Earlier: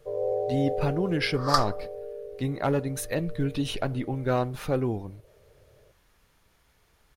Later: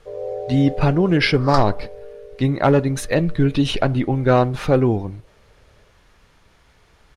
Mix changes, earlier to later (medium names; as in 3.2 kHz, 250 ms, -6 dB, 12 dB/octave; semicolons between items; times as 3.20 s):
speech +10.5 dB; master: add distance through air 57 m